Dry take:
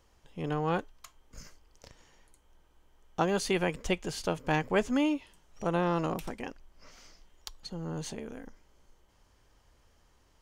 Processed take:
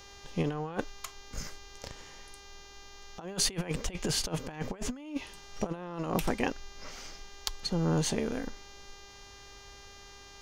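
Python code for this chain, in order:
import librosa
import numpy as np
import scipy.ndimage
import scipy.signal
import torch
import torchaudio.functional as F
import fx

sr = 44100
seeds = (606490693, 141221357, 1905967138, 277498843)

y = fx.dmg_buzz(x, sr, base_hz=400.0, harmonics=17, level_db=-62.0, tilt_db=-1, odd_only=False)
y = fx.over_compress(y, sr, threshold_db=-35.0, ratio=-0.5)
y = y * librosa.db_to_amplitude(4.0)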